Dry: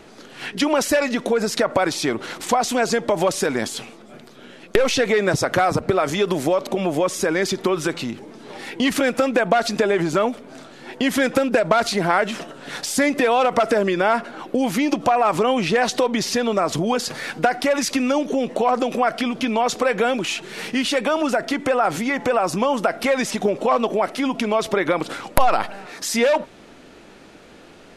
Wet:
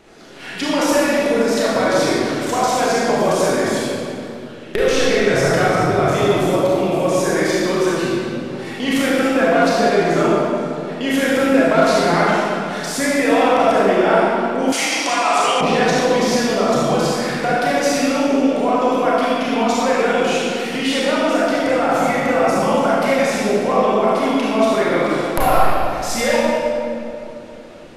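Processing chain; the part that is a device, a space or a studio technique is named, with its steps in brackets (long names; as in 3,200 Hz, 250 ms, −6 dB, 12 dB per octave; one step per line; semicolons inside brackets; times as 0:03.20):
stairwell (convolution reverb RT60 2.6 s, pre-delay 28 ms, DRR −8 dB)
0:14.72–0:15.61: meter weighting curve ITU-R 468
level −5 dB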